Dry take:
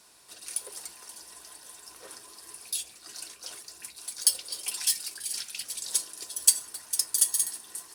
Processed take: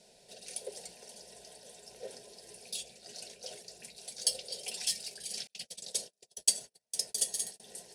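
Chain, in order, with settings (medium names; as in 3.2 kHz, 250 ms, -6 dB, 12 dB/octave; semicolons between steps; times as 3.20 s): distance through air 60 m; static phaser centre 310 Hz, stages 6; 5.47–7.60 s: gate -41 dBFS, range -36 dB; resonant low shelf 800 Hz +7 dB, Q 1.5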